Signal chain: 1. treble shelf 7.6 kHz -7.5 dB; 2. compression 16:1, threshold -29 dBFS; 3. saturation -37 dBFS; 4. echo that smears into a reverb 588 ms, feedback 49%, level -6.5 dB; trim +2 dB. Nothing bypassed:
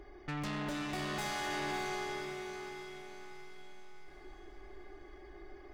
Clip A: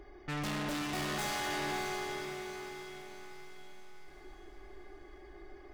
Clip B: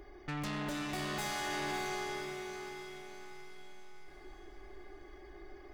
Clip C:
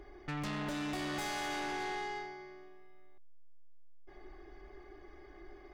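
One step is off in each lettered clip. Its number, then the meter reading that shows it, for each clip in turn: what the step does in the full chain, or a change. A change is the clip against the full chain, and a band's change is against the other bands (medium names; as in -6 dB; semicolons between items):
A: 2, mean gain reduction 2.5 dB; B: 1, 8 kHz band +2.5 dB; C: 4, echo-to-direct -5.5 dB to none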